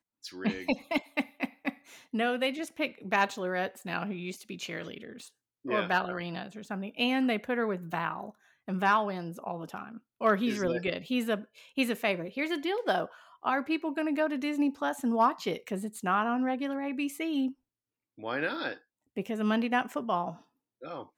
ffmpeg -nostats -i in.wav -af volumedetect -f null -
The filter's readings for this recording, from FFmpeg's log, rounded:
mean_volume: -31.9 dB
max_volume: -13.7 dB